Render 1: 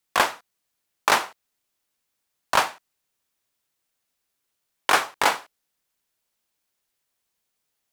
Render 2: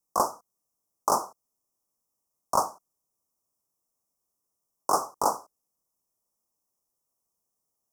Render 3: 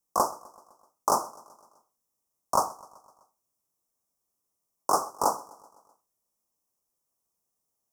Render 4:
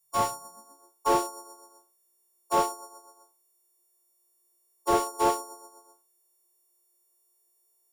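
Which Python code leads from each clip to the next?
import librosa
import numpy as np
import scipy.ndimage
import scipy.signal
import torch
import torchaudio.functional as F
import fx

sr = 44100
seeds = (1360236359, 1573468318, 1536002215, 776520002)

y1 = scipy.signal.sosfilt(scipy.signal.cheby1(4, 1.0, [1200.0, 5400.0], 'bandstop', fs=sr, output='sos'), x)
y1 = fx.peak_eq(y1, sr, hz=200.0, db=2.0, octaves=0.77)
y1 = y1 * 10.0 ** (-2.0 / 20.0)
y2 = fx.echo_feedback(y1, sr, ms=127, feedback_pct=60, wet_db=-22)
y3 = fx.freq_snap(y2, sr, grid_st=4)
y3 = fx.filter_sweep_highpass(y3, sr, from_hz=110.0, to_hz=360.0, start_s=0.28, end_s=0.87, q=6.7)
y3 = fx.slew_limit(y3, sr, full_power_hz=180.0)
y3 = y3 * 10.0 ** (-3.0 / 20.0)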